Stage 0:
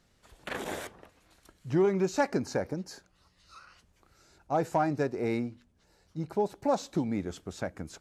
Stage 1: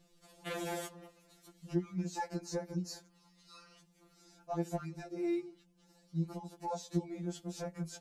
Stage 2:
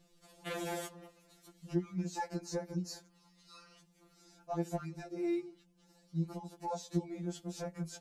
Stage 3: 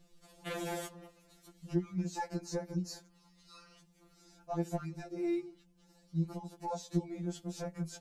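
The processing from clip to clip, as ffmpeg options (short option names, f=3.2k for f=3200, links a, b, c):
-af "equalizer=f=1.6k:w=0.77:g=-7,acompressor=threshold=-35dB:ratio=5,afftfilt=real='re*2.83*eq(mod(b,8),0)':imag='im*2.83*eq(mod(b,8),0)':win_size=2048:overlap=0.75,volume=3.5dB"
-af anull
-af "lowshelf=f=84:g=9"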